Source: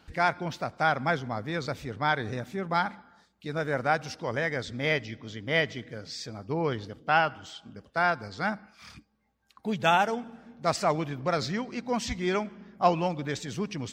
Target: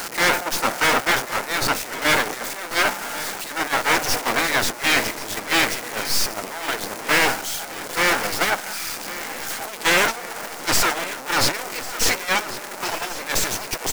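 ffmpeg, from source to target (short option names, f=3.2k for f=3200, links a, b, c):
-filter_complex "[0:a]aeval=exprs='val(0)+0.5*0.0562*sgn(val(0))':c=same,afftfilt=real='re*lt(hypot(re,im),0.224)':imag='im*lt(hypot(re,im),0.224)':win_size=1024:overlap=0.75,agate=range=-18dB:threshold=-29dB:ratio=16:detection=peak,equalizer=f=3.2k:w=1.2:g=-7,bandreject=f=1.1k:w=5.1,acrossover=split=230[a][b];[b]acontrast=38[c];[a][c]amix=inputs=2:normalize=0,aeval=exprs='max(val(0),0)':c=same,crystalizer=i=2.5:c=0,asplit=2[d][e];[e]highpass=f=720:p=1,volume=28dB,asoftclip=type=tanh:threshold=-3.5dB[f];[d][f]amix=inputs=2:normalize=0,lowpass=f=3.3k:p=1,volume=-6dB,aecho=1:1:1093|2186|3279|4372|5465|6558:0.168|0.0957|0.0545|0.0311|0.0177|0.0101"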